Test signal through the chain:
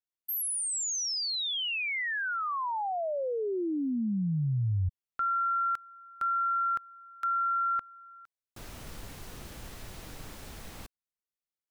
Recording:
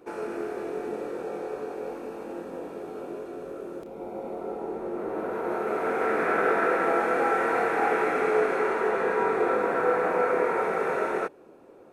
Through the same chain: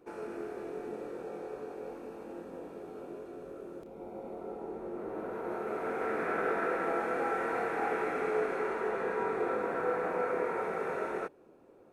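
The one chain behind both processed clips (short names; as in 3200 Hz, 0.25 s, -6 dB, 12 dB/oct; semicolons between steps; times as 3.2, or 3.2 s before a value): low shelf 190 Hz +6 dB; gain -8.5 dB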